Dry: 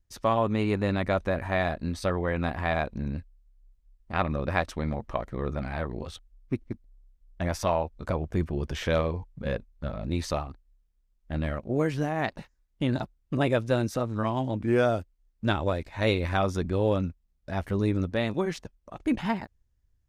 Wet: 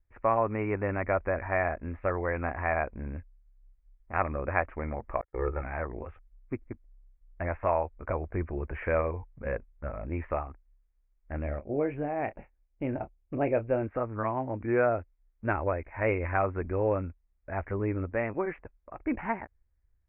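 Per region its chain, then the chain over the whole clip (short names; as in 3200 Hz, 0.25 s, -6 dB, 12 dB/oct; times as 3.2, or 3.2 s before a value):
5.21–5.63 gate -34 dBFS, range -43 dB + comb 2.3 ms, depth 81%
11.42–13.82 band shelf 1400 Hz -8 dB 1.3 oct + doubler 28 ms -12 dB
whole clip: steep low-pass 2400 Hz 72 dB/oct; bell 170 Hz -11.5 dB 1.2 oct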